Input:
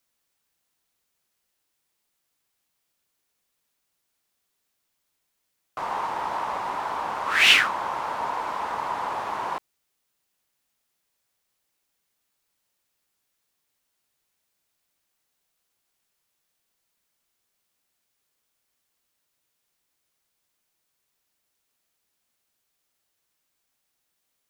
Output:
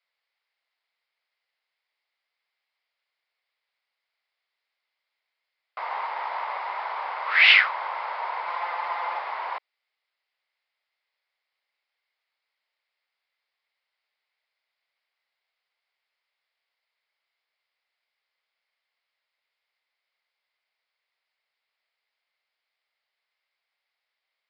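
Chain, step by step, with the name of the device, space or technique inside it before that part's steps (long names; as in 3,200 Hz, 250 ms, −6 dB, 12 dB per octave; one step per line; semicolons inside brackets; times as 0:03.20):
0:08.47–0:09.19: comb filter 5.8 ms, depth 68%
musical greeting card (downsampling to 11,025 Hz; high-pass filter 530 Hz 24 dB per octave; parametric band 2,100 Hz +10 dB 0.29 octaves)
level −2.5 dB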